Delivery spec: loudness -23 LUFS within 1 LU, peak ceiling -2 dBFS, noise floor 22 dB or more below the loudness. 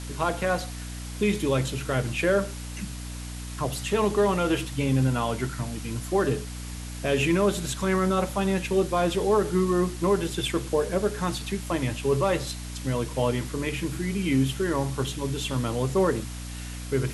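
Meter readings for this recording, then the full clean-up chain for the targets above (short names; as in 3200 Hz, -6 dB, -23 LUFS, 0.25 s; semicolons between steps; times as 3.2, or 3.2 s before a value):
hum 60 Hz; harmonics up to 300 Hz; hum level -34 dBFS; noise floor -36 dBFS; noise floor target -49 dBFS; loudness -26.5 LUFS; peak -11.5 dBFS; loudness target -23.0 LUFS
-> de-hum 60 Hz, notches 5; denoiser 13 dB, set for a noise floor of -36 dBFS; gain +3.5 dB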